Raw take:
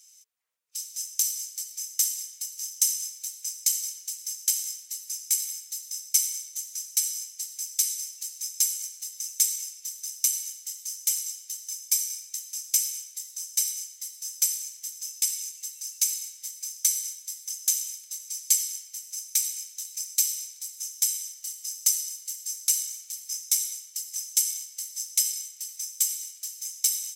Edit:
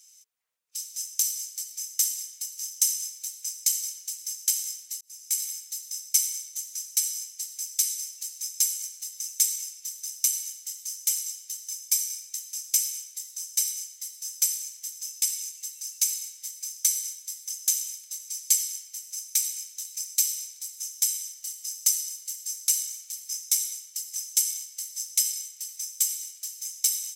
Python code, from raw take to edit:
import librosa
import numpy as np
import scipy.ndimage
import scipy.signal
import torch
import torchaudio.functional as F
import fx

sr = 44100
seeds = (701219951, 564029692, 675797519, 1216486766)

y = fx.edit(x, sr, fx.fade_in_span(start_s=5.01, length_s=0.42), tone=tone)